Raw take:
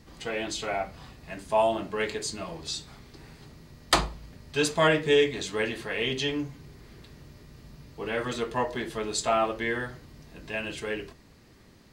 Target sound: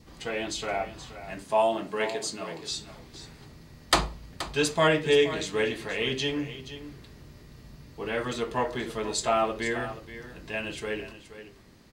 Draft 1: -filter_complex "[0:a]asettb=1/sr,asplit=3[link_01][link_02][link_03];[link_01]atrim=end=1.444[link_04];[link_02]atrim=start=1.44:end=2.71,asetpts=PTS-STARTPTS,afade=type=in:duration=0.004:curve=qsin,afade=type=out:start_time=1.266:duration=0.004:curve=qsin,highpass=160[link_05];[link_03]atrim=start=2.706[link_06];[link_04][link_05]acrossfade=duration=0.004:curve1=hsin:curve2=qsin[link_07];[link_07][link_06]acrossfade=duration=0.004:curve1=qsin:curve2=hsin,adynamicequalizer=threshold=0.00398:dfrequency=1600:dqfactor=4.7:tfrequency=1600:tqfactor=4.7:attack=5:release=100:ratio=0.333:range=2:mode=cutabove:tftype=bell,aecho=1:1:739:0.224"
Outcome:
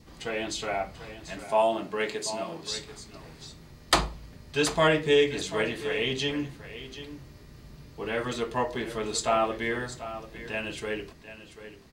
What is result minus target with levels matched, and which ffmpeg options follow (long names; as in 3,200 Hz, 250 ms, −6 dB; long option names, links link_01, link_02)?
echo 263 ms late
-filter_complex "[0:a]asettb=1/sr,asplit=3[link_01][link_02][link_03];[link_01]atrim=end=1.444[link_04];[link_02]atrim=start=1.44:end=2.71,asetpts=PTS-STARTPTS,afade=type=in:duration=0.004:curve=qsin,afade=type=out:start_time=1.266:duration=0.004:curve=qsin,highpass=160[link_05];[link_03]atrim=start=2.706[link_06];[link_04][link_05]acrossfade=duration=0.004:curve1=hsin:curve2=qsin[link_07];[link_07][link_06]acrossfade=duration=0.004:curve1=qsin:curve2=hsin,adynamicequalizer=threshold=0.00398:dfrequency=1600:dqfactor=4.7:tfrequency=1600:tqfactor=4.7:attack=5:release=100:ratio=0.333:range=2:mode=cutabove:tftype=bell,aecho=1:1:476:0.224"